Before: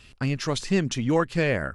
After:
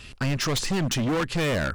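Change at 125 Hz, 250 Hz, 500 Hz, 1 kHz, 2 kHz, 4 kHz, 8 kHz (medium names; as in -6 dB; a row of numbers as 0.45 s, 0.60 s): +0.5 dB, -1.0 dB, -2.5 dB, 0.0 dB, +0.5 dB, +4.5 dB, +5.0 dB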